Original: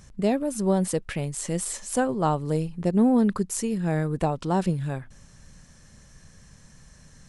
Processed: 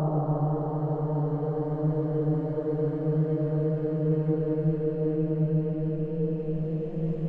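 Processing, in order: low-pass that closes with the level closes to 490 Hz, closed at -18.5 dBFS; Paulstretch 20×, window 0.50 s, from 2.35 s

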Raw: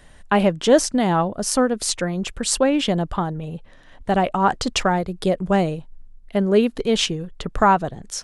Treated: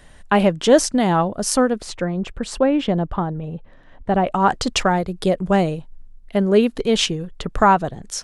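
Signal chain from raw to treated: 1.78–4.27 s: low-pass 1.4 kHz 6 dB/octave; trim +1.5 dB

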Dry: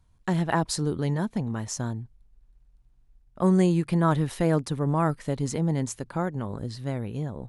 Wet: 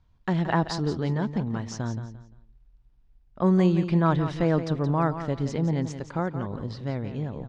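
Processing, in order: low-pass 5.3 kHz 24 dB/octave; band-stop 4.2 kHz, Q 25; on a send: feedback delay 173 ms, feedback 28%, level -10.5 dB

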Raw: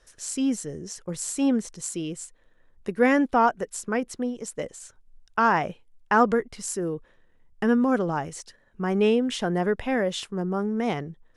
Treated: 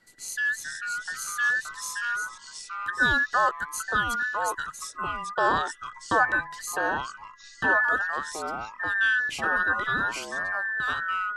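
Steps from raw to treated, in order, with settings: every band turned upside down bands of 2 kHz; 3.46–5.62 s: treble shelf 6.7 kHz +7 dB; ever faster or slower copies 371 ms, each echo -3 st, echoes 3, each echo -6 dB; trim -3 dB

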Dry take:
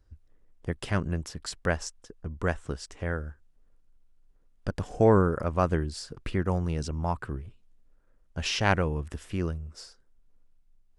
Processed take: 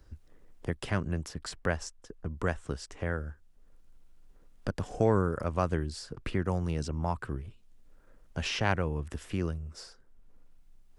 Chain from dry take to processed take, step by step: three bands compressed up and down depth 40%; trim -2.5 dB

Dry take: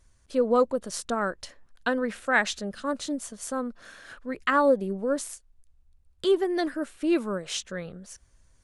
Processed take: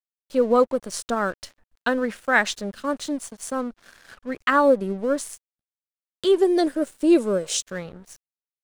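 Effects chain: 6.38–7.62 s: ten-band graphic EQ 500 Hz +9 dB, 1 kHz -5 dB, 2 kHz -5 dB, 8 kHz +8 dB; crossover distortion -48.5 dBFS; trim +4 dB

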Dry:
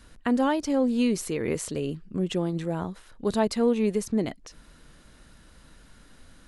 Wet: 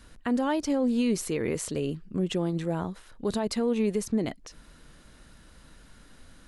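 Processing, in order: peak limiter -18 dBFS, peak gain reduction 7.5 dB

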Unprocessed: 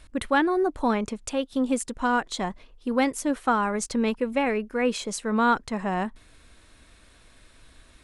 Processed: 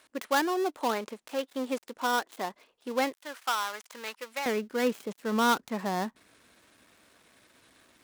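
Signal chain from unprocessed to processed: dead-time distortion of 0.13 ms; high-pass 380 Hz 12 dB/octave, from 3.13 s 1 kHz, from 4.46 s 180 Hz; trim -2.5 dB

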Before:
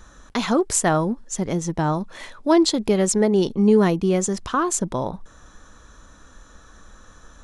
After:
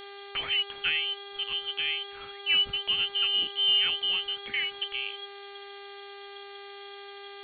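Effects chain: frequency inversion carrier 3.3 kHz; mains buzz 400 Hz, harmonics 11, -36 dBFS -4 dB/octave; trim -9 dB

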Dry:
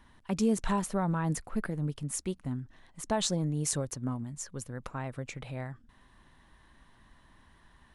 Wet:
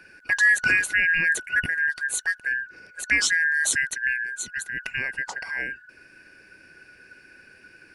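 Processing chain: four frequency bands reordered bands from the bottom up 2143; trim +8 dB

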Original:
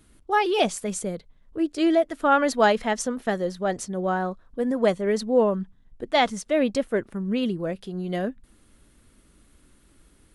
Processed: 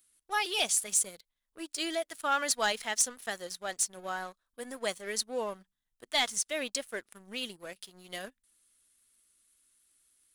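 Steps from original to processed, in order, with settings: pre-emphasis filter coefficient 0.97; waveshaping leveller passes 2

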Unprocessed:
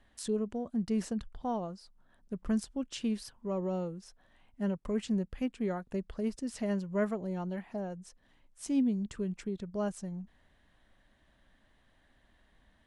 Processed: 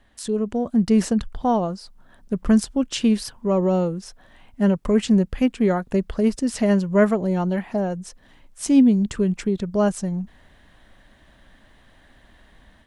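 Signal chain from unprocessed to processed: level rider gain up to 7.5 dB; trim +6.5 dB

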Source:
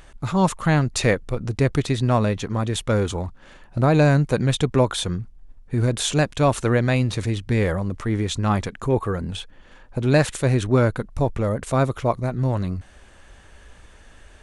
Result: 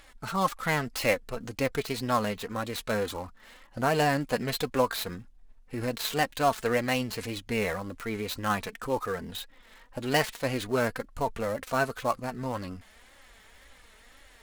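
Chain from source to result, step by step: dead-time distortion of 0.058 ms; bass shelf 450 Hz -11 dB; formant shift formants +2 st; flange 1.9 Hz, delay 3.5 ms, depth 1.2 ms, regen +34%; trim +2 dB

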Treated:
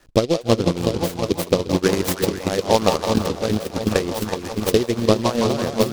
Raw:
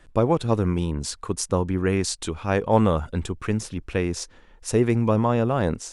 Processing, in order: bass shelf 130 Hz -10.5 dB; delay with an opening low-pass 354 ms, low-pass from 400 Hz, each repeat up 1 oct, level -3 dB; transient shaper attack +4 dB, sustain -12 dB; in parallel at +1.5 dB: compression, threshold -23 dBFS, peak gain reduction 11.5 dB; on the sum: rotary cabinet horn 0.9 Hz, later 6 Hz, at 3.25 s; repeats whose band climbs or falls 165 ms, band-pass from 820 Hz, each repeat 0.7 oct, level -1 dB; transient shaper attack +8 dB, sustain 0 dB; delay time shaken by noise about 3.7 kHz, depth 0.066 ms; trim -3 dB

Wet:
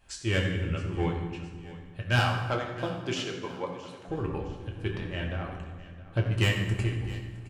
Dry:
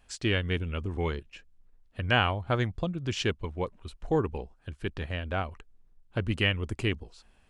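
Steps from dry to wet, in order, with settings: 2.19–4.08 s: high-pass 260 Hz 12 dB/octave; in parallel at -9.5 dB: hard clipper -20.5 dBFS, distortion -13 dB; on the sum: tremolo triangle 3.3 Hz, depth 90%; saturation -20.5 dBFS, distortion -12 dB; feedback delay 665 ms, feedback 47%, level -17.5 dB; reverberation RT60 1.5 s, pre-delay 4 ms, DRR -0.5 dB

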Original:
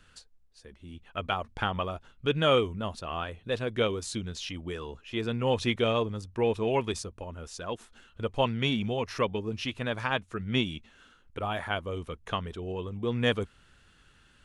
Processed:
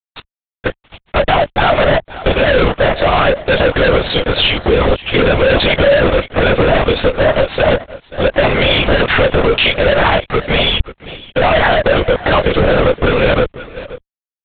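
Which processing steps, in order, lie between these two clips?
one-sided wavefolder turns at -23.5 dBFS; resonant high-pass 560 Hz, resonance Q 5.3; fuzz box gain 41 dB, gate -44 dBFS; doubling 14 ms -4 dB; delay 524 ms -20.5 dB; LPC vocoder at 8 kHz whisper; loudness maximiser +9 dB; trim -1.5 dB

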